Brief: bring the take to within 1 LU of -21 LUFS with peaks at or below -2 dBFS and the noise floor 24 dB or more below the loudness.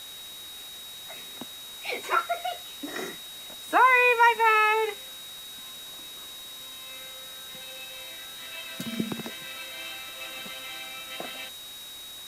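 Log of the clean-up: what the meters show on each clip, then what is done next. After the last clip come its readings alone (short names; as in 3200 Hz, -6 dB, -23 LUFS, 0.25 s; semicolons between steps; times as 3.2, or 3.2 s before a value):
steady tone 3800 Hz; tone level -41 dBFS; noise floor -42 dBFS; noise floor target -51 dBFS; loudness -27.0 LUFS; peak -9.0 dBFS; loudness target -21.0 LUFS
-> notch 3800 Hz, Q 30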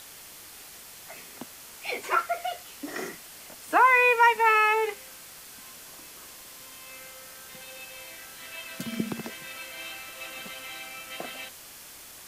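steady tone none; noise floor -47 dBFS; noise floor target -50 dBFS
-> denoiser 6 dB, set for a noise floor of -47 dBFS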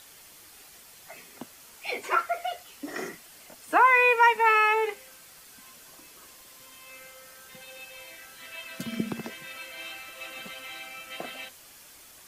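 noise floor -51 dBFS; loudness -25.0 LUFS; peak -9.0 dBFS; loudness target -21.0 LUFS
-> gain +4 dB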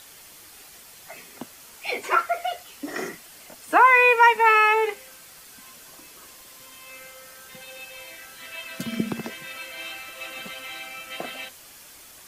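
loudness -21.0 LUFS; peak -5.0 dBFS; noise floor -47 dBFS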